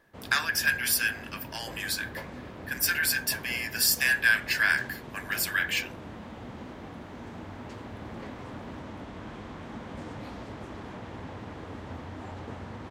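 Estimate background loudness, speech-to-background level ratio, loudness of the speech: −42.5 LKFS, 16.5 dB, −26.0 LKFS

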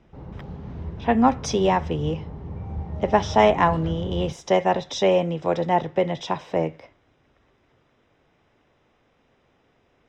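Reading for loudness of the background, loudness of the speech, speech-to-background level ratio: −35.0 LKFS, −22.5 LKFS, 12.5 dB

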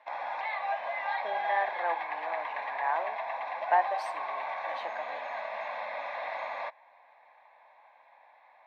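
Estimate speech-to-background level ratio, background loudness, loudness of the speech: 1.0 dB, −35.0 LKFS, −34.0 LKFS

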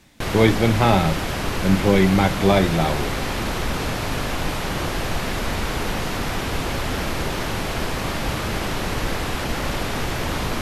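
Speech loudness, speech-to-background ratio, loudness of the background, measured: −19.5 LKFS, 6.0 dB, −25.5 LKFS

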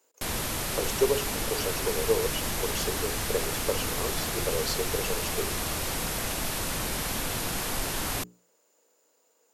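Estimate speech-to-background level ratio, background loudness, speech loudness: −2.5 dB, −30.0 LKFS, −32.5 LKFS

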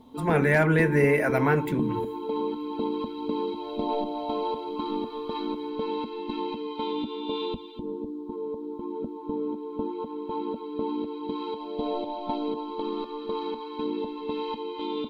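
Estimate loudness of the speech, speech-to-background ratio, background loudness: −23.5 LKFS, 8.5 dB, −32.0 LKFS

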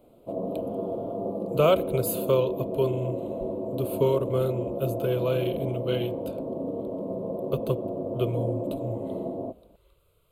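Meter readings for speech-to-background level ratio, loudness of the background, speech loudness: 4.0 dB, −32.5 LKFS, −28.5 LKFS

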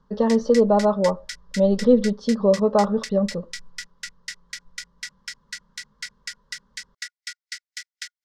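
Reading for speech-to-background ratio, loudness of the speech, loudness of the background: 16.0 dB, −20.5 LKFS, −36.5 LKFS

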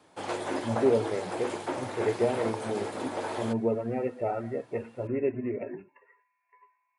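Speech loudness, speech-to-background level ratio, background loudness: −31.5 LKFS, 3.5 dB, −35.0 LKFS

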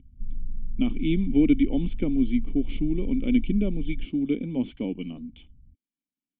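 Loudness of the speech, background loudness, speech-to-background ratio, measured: −26.0 LKFS, −39.0 LKFS, 13.0 dB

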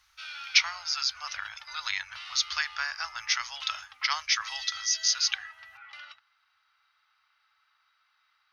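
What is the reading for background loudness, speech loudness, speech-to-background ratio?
−42.5 LKFS, −28.5 LKFS, 14.0 dB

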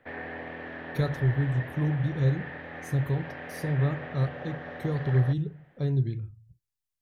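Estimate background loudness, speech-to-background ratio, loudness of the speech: −39.5 LKFS, 10.5 dB, −29.0 LKFS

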